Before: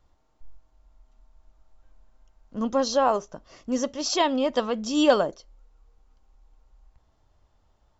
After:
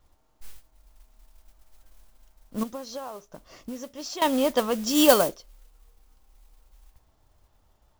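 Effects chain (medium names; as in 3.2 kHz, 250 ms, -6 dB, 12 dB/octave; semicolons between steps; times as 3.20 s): modulation noise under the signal 16 dB; 2.63–4.22 s: compression 8:1, threshold -35 dBFS, peak gain reduction 18.5 dB; 4.87–5.29 s: treble shelf 5 kHz +8.5 dB; trim +1 dB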